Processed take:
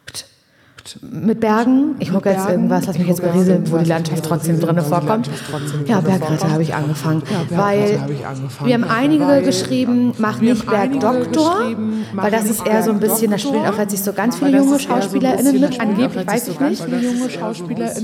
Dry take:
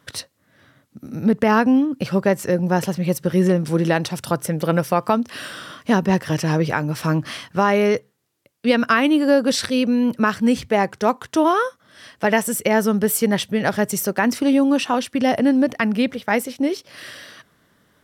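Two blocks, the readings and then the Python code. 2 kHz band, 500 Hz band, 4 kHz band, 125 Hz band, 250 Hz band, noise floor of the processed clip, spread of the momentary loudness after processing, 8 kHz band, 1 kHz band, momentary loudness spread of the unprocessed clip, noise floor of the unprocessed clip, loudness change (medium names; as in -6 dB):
-1.5 dB, +3.5 dB, +1.0 dB, +6.0 dB, +4.0 dB, -34 dBFS, 8 LU, +3.5 dB, +2.0 dB, 8 LU, -63 dBFS, +3.0 dB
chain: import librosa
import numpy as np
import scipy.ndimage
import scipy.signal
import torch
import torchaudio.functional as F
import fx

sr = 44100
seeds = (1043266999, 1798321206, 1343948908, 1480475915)

y = fx.room_shoebox(x, sr, seeds[0], volume_m3=1600.0, walls='mixed', distance_m=0.33)
y = fx.dynamic_eq(y, sr, hz=2200.0, q=0.83, threshold_db=-35.0, ratio=4.0, max_db=-6)
y = fx.echo_pitch(y, sr, ms=693, semitones=-2, count=3, db_per_echo=-6.0)
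y = y * 10.0 ** (2.5 / 20.0)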